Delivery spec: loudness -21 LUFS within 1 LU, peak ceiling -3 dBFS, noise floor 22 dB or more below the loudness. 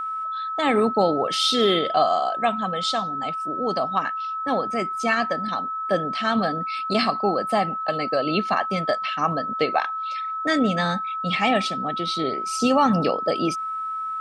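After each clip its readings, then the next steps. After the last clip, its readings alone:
steady tone 1.3 kHz; tone level -26 dBFS; loudness -23.0 LUFS; peak level -7.5 dBFS; loudness target -21.0 LUFS
-> band-stop 1.3 kHz, Q 30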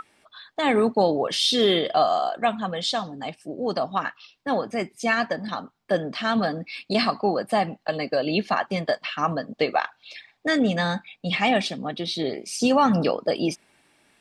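steady tone not found; loudness -24.5 LUFS; peak level -8.5 dBFS; loudness target -21.0 LUFS
-> trim +3.5 dB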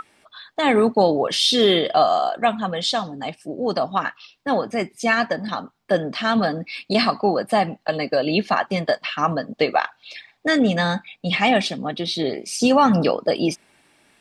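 loudness -21.0 LUFS; peak level -5.0 dBFS; noise floor -63 dBFS

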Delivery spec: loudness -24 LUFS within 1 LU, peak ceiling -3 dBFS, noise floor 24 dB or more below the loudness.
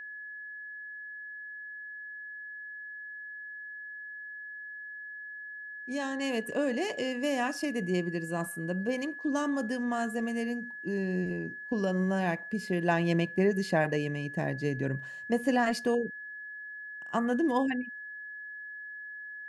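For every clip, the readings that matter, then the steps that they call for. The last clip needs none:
steady tone 1.7 kHz; tone level -40 dBFS; loudness -33.0 LUFS; peak level -14.5 dBFS; loudness target -24.0 LUFS
-> band-stop 1.7 kHz, Q 30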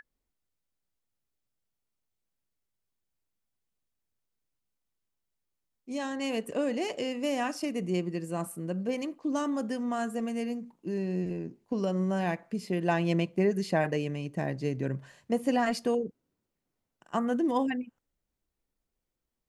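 steady tone not found; loudness -31.5 LUFS; peak level -14.5 dBFS; loudness target -24.0 LUFS
-> trim +7.5 dB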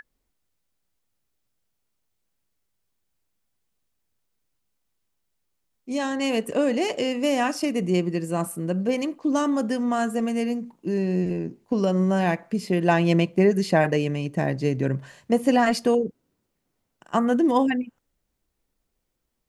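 loudness -24.0 LUFS; peak level -7.0 dBFS; noise floor -77 dBFS

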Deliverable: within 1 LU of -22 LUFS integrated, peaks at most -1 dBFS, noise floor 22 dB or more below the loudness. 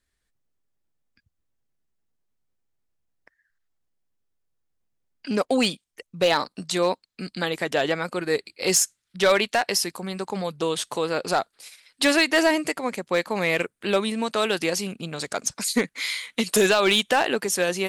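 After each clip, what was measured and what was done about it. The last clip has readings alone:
clipped samples 0.3%; clipping level -12.0 dBFS; loudness -23.5 LUFS; peak level -12.0 dBFS; loudness target -22.0 LUFS
-> clip repair -12 dBFS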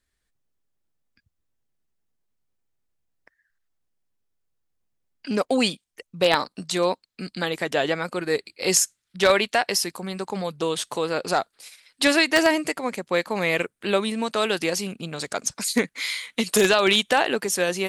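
clipped samples 0.0%; loudness -23.5 LUFS; peak level -3.0 dBFS; loudness target -22.0 LUFS
-> trim +1.5 dB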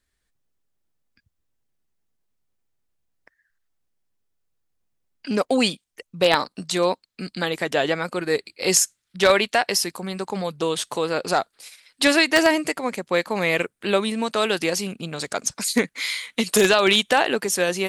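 loudness -22.0 LUFS; peak level -1.5 dBFS; noise floor -77 dBFS

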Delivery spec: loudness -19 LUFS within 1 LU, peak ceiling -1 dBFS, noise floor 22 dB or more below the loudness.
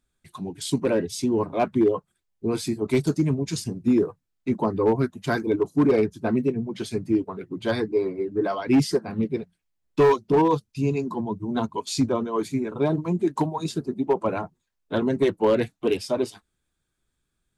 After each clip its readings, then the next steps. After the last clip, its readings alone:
clipped samples 0.7%; clipping level -13.0 dBFS; loudness -24.5 LUFS; peak level -13.0 dBFS; loudness target -19.0 LUFS
-> clip repair -13 dBFS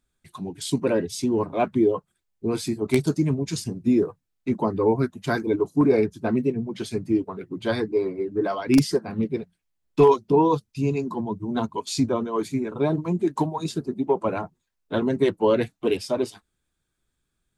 clipped samples 0.0%; loudness -24.5 LUFS; peak level -4.0 dBFS; loudness target -19.0 LUFS
-> trim +5.5 dB; peak limiter -1 dBFS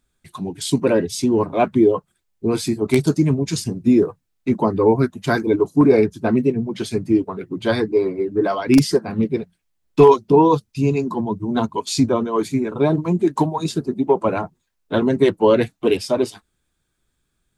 loudness -19.0 LUFS; peak level -1.0 dBFS; noise floor -72 dBFS

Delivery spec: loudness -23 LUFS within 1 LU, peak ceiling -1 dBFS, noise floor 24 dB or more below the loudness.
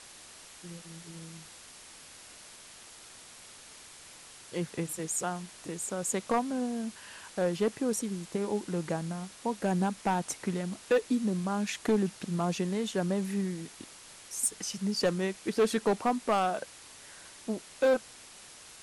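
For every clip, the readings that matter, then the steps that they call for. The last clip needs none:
clipped samples 0.6%; clipping level -20.0 dBFS; noise floor -51 dBFS; noise floor target -56 dBFS; loudness -31.5 LUFS; peak level -20.0 dBFS; loudness target -23.0 LUFS
-> clip repair -20 dBFS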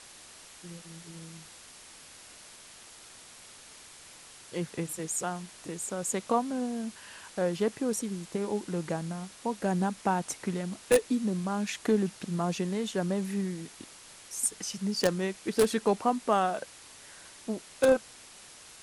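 clipped samples 0.0%; noise floor -51 dBFS; noise floor target -55 dBFS
-> noise reduction 6 dB, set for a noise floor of -51 dBFS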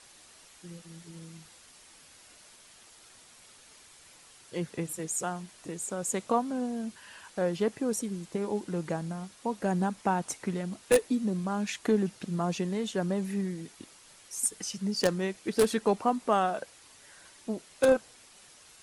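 noise floor -56 dBFS; loudness -31.0 LUFS; peak level -11.0 dBFS; loudness target -23.0 LUFS
-> trim +8 dB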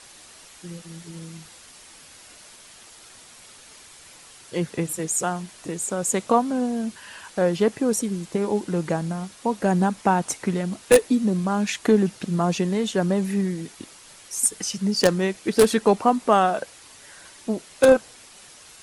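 loudness -23.0 LUFS; peak level -3.0 dBFS; noise floor -48 dBFS

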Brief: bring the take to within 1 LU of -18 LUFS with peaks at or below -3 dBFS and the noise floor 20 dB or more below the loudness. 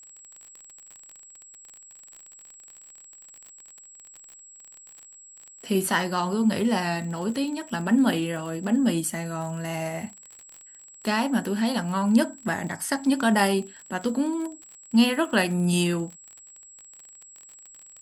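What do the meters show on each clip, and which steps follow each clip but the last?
tick rate 38 per s; steady tone 7.7 kHz; tone level -46 dBFS; loudness -25.0 LUFS; peak level -8.5 dBFS; loudness target -18.0 LUFS
-> de-click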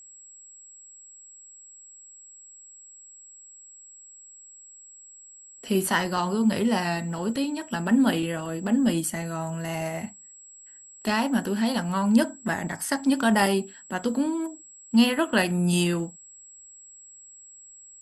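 tick rate 0 per s; steady tone 7.7 kHz; tone level -46 dBFS
-> band-stop 7.7 kHz, Q 30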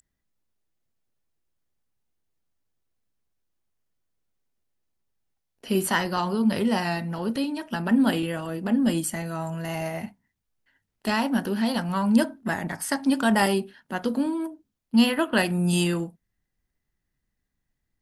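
steady tone not found; loudness -25.0 LUFS; peak level -8.5 dBFS; loudness target -18.0 LUFS
-> trim +7 dB; peak limiter -3 dBFS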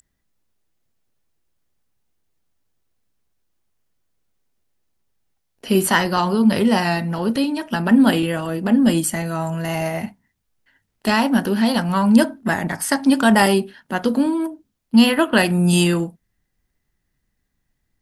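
loudness -18.5 LUFS; peak level -3.0 dBFS; noise floor -74 dBFS

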